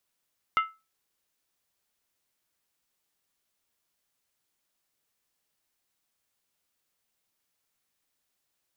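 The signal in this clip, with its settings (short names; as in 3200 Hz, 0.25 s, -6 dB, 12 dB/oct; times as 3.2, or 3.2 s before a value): skin hit, lowest mode 1310 Hz, decay 0.26 s, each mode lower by 7 dB, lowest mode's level -17.5 dB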